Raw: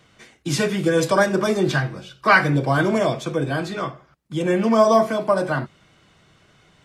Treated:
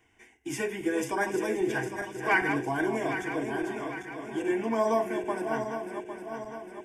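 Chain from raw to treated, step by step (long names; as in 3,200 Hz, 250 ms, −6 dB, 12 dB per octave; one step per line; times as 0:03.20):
feedback delay that plays each chunk backwards 403 ms, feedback 70%, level −7 dB
phaser with its sweep stopped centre 840 Hz, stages 8
level −6.5 dB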